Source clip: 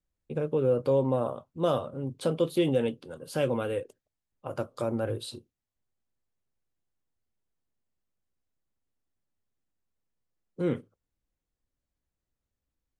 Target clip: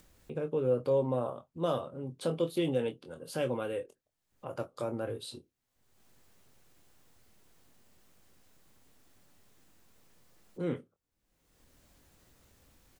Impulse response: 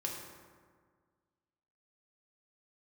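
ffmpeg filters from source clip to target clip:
-filter_complex "[0:a]lowshelf=f=73:g=-8.5,asplit=2[s0][s1];[s1]adelay=24,volume=0.376[s2];[s0][s2]amix=inputs=2:normalize=0,acompressor=mode=upward:threshold=0.0178:ratio=2.5,volume=0.596"

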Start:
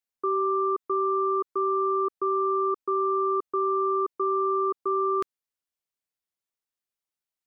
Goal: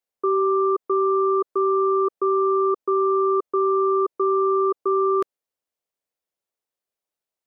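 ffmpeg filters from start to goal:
-af "equalizer=f=540:t=o:w=1.4:g=10"

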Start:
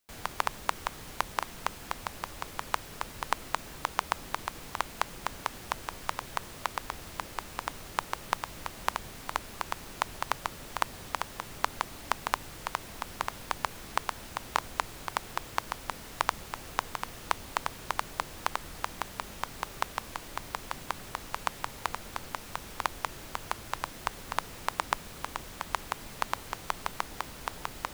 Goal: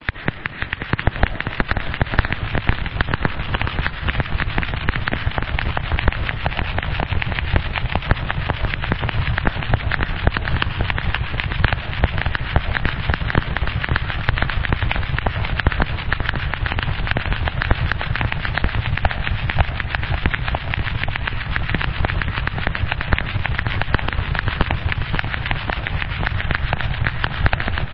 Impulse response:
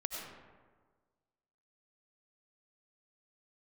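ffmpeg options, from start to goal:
-filter_complex "[0:a]areverse,asubboost=boost=10:cutoff=160,aeval=exprs='0.531*(cos(1*acos(clip(val(0)/0.531,-1,1)))-cos(1*PI/2))+0.0168*(cos(2*acos(clip(val(0)/0.531,-1,1)))-cos(2*PI/2))+0.0119*(cos(5*acos(clip(val(0)/0.531,-1,1)))-cos(5*PI/2))+0.106*(cos(7*acos(clip(val(0)/0.531,-1,1)))-cos(7*PI/2))+0.237*(cos(8*acos(clip(val(0)/0.531,-1,1)))-cos(8*PI/2))':c=same,acompressor=threshold=0.0501:ratio=2,highpass=f=170:t=q:w=0.5412,highpass=f=170:t=q:w=1.307,lowpass=f=3600:t=q:w=0.5176,lowpass=f=3600:t=q:w=0.7071,lowpass=f=3600:t=q:w=1.932,afreqshift=-270,acrossover=split=1000[s0][s1];[s0]aeval=exprs='val(0)*(1-0.7/2+0.7/2*cos(2*PI*7.4*n/s))':c=same[s2];[s1]aeval=exprs='val(0)*(1-0.7/2-0.7/2*cos(2*PI*7.4*n/s))':c=same[s3];[s2][s3]amix=inputs=2:normalize=0,equalizer=f=490:t=o:w=2:g=-7,aecho=1:1:536|1072|1608|2144|2680:0.282|0.124|0.0546|0.024|0.0106,asplit=2[s4][s5];[1:a]atrim=start_sample=2205,afade=t=out:st=0.43:d=0.01,atrim=end_sample=19404[s6];[s5][s6]afir=irnorm=-1:irlink=0,volume=0.237[s7];[s4][s7]amix=inputs=2:normalize=0,alimiter=level_in=15:limit=0.891:release=50:level=0:latency=1,volume=0.891" -ar 16000 -c:a libmp3lame -b:a 24k

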